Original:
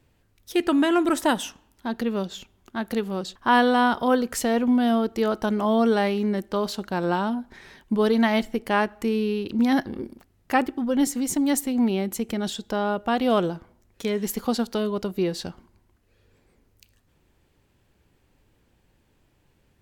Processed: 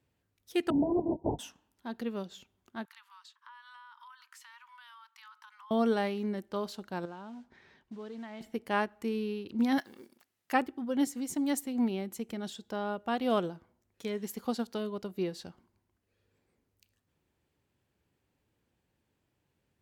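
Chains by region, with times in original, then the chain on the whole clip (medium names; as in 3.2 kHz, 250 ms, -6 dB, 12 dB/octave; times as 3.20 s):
0.70–1.39 s: steep low-pass 940 Hz 96 dB/octave + LPC vocoder at 8 kHz whisper
2.85–5.71 s: steep high-pass 910 Hz 96 dB/octave + treble shelf 4.1 kHz -8.5 dB + compression 10:1, threshold -37 dBFS
7.05–8.41 s: modulation noise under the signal 19 dB + compression 2.5:1, threshold -32 dBFS + distance through air 120 m
9.78–10.53 s: block-companded coder 7-bit + high-pass 260 Hz 6 dB/octave + tilt shelf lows -6.5 dB, about 890 Hz
whole clip: high-pass 72 Hz; upward expansion 1.5:1, over -29 dBFS; trim -6 dB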